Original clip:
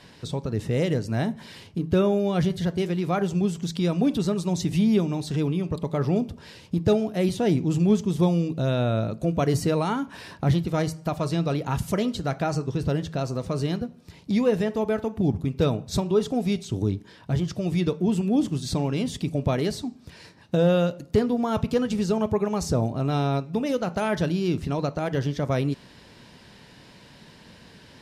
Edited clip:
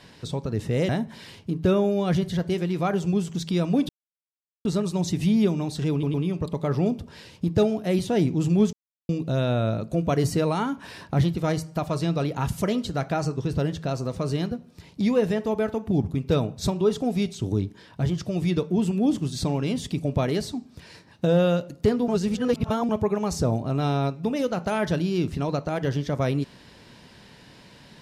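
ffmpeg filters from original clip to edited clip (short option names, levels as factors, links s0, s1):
-filter_complex "[0:a]asplit=9[s0][s1][s2][s3][s4][s5][s6][s7][s8];[s0]atrim=end=0.892[s9];[s1]atrim=start=1.168:end=4.17,asetpts=PTS-STARTPTS,afade=t=out:st=2.998:d=0.004:c=hsin,apad=pad_dur=0.76[s10];[s2]atrim=start=4.17:end=5.552,asetpts=PTS-STARTPTS,afade=t=in:d=0.004:c=hsin[s11];[s3]atrim=start=5.438:end=5.552[s12];[s4]atrim=start=5.438:end=8.03,asetpts=PTS-STARTPTS,afade=t=out:st=2.588:d=0.004:c=hsin[s13];[s5]atrim=start=8.03:end=8.39,asetpts=PTS-STARTPTS,volume=0[s14];[s6]atrim=start=8.39:end=21.382,asetpts=PTS-STARTPTS,afade=t=in:d=0.004:c=hsin[s15];[s7]atrim=start=21.378:end=22.192,asetpts=PTS-STARTPTS,areverse[s16];[s8]atrim=start=22.188[s17];[s10][s11]concat=n=2:v=0:a=1[s18];[s9][s18]acrossfade=d=0.004:c1=hsin:c2=hsin[s19];[s19][s12]acrossfade=d=0.004:c1=hsin:c2=hsin[s20];[s13][s14][s15]concat=n=3:v=0:a=1[s21];[s20][s21]acrossfade=d=0.004:c1=hsin:c2=hsin[s22];[s22][s16]acrossfade=d=0.004:c1=hsin:c2=hsin[s23];[s23][s17]acrossfade=d=0.004:c1=hsin:c2=hsin"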